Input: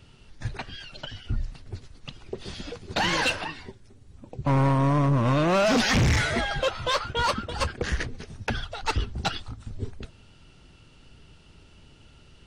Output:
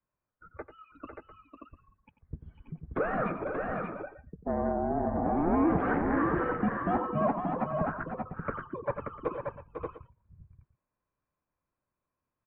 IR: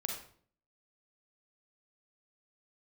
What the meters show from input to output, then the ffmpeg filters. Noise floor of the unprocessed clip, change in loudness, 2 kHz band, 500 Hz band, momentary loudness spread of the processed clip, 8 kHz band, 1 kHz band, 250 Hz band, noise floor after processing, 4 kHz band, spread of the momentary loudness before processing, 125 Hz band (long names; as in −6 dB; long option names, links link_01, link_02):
−54 dBFS, −5.5 dB, −10.0 dB, −2.5 dB, 20 LU, below −40 dB, −3.0 dB, −2.0 dB, below −85 dBFS, below −35 dB, 18 LU, −12.5 dB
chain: -af "afftdn=noise_reduction=26:noise_floor=-35,adynamicequalizer=threshold=0.0141:dfrequency=700:dqfactor=0.75:tfrequency=700:tqfactor=0.75:attack=5:release=100:ratio=0.375:range=3:mode=boostabove:tftype=bell,acompressor=threshold=-37dB:ratio=1.5,aecho=1:1:92|500|581|698:0.251|0.398|0.562|0.133,highpass=frequency=370:width_type=q:width=0.5412,highpass=frequency=370:width_type=q:width=1.307,lowpass=frequency=2000:width_type=q:width=0.5176,lowpass=frequency=2000:width_type=q:width=0.7071,lowpass=frequency=2000:width_type=q:width=1.932,afreqshift=-320"